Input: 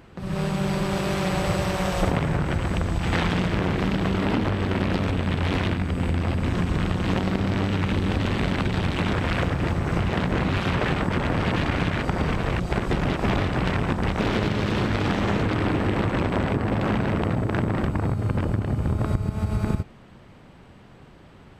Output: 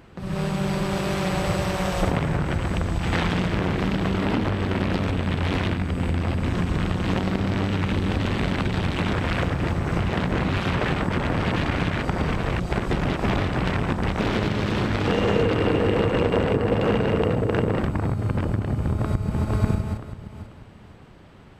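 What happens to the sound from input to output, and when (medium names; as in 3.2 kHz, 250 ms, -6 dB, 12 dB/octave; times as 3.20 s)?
15.07–17.79 s: small resonant body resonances 470/2800 Hz, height 13 dB
18.79–19.48 s: echo throw 490 ms, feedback 30%, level -2 dB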